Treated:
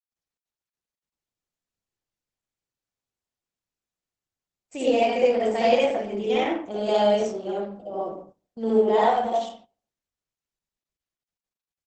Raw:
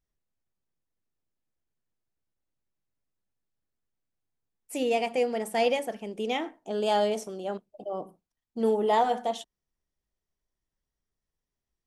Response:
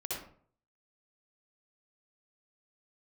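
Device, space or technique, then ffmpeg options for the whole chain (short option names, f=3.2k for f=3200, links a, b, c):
speakerphone in a meeting room: -filter_complex "[1:a]atrim=start_sample=2205[a];[0:a][a]afir=irnorm=-1:irlink=0,asplit=2[b][c];[c]adelay=90,highpass=300,lowpass=3.4k,asoftclip=type=hard:threshold=-16.5dB,volume=-16dB[d];[b][d]amix=inputs=2:normalize=0,dynaudnorm=f=920:g=5:m=13dB,agate=range=-15dB:threshold=-41dB:ratio=16:detection=peak,volume=-5.5dB" -ar 48000 -c:a libopus -b:a 12k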